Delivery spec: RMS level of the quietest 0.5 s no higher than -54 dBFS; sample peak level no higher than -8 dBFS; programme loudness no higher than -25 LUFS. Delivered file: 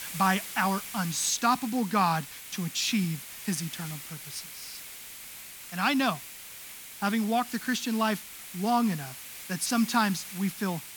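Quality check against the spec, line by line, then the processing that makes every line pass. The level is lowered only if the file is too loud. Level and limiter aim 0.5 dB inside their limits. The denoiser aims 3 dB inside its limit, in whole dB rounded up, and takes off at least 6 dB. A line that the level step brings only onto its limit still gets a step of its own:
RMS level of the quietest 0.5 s -44 dBFS: fail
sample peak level -10.0 dBFS: OK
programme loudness -29.0 LUFS: OK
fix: denoiser 13 dB, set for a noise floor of -44 dBFS

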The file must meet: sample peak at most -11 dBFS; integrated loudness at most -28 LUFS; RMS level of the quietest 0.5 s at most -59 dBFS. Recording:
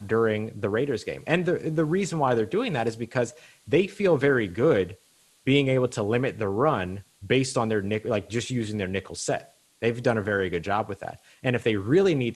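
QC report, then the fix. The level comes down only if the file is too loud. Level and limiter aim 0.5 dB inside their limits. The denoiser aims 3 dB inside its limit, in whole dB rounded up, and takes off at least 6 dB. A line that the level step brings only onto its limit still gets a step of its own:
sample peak -7.0 dBFS: fail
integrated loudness -25.5 LUFS: fail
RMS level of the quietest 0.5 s -61 dBFS: OK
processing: gain -3 dB; limiter -11.5 dBFS

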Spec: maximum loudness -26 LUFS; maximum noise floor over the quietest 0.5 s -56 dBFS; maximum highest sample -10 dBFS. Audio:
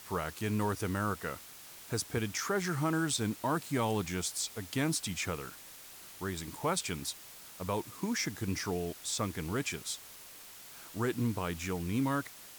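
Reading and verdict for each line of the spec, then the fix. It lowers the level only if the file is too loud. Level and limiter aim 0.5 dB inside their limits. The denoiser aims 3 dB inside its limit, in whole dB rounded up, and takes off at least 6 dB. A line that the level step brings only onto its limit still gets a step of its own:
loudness -34.5 LUFS: OK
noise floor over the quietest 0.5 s -51 dBFS: fail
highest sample -19.5 dBFS: OK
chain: denoiser 8 dB, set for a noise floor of -51 dBFS

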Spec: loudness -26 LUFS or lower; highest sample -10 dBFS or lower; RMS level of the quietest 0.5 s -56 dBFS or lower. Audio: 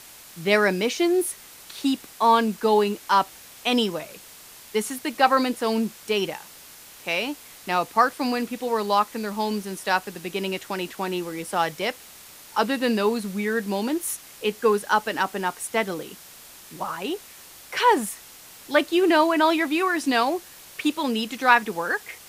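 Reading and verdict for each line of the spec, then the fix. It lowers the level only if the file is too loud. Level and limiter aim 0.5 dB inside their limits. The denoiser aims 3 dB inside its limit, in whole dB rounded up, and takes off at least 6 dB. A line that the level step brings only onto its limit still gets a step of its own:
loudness -24.0 LUFS: fail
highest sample -3.5 dBFS: fail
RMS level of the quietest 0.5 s -46 dBFS: fail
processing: denoiser 11 dB, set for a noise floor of -46 dBFS; gain -2.5 dB; limiter -10.5 dBFS

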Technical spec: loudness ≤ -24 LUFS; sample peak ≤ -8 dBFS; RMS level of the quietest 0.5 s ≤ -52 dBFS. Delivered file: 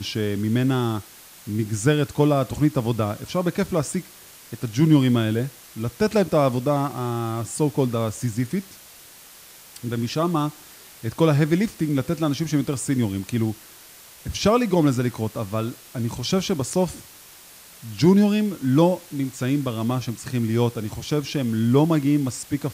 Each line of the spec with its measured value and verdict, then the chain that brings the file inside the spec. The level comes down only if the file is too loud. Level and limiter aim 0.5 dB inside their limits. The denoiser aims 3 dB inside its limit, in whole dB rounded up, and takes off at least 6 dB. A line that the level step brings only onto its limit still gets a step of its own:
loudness -23.0 LUFS: fail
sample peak -6.0 dBFS: fail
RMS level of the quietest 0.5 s -46 dBFS: fail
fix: denoiser 8 dB, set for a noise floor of -46 dBFS; gain -1.5 dB; limiter -8.5 dBFS

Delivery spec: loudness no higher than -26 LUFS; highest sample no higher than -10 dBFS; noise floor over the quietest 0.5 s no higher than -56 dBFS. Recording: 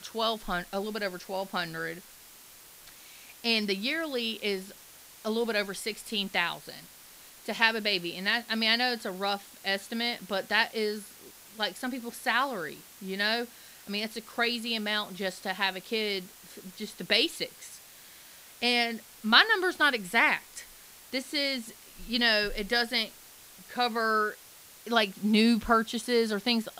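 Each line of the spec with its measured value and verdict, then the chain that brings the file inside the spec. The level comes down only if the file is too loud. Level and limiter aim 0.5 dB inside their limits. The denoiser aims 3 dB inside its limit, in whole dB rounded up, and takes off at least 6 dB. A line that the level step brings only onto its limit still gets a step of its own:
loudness -28.5 LUFS: OK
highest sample -4.5 dBFS: fail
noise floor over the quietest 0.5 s -52 dBFS: fail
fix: denoiser 7 dB, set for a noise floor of -52 dBFS; limiter -10.5 dBFS

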